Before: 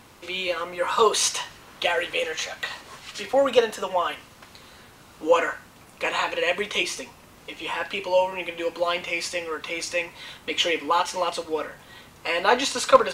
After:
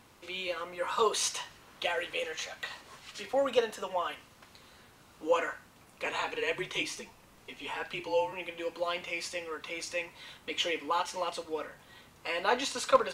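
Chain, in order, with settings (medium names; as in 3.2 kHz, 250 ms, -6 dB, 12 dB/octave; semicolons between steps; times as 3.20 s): 6.05–8.33 s: frequency shift -43 Hz; trim -8.5 dB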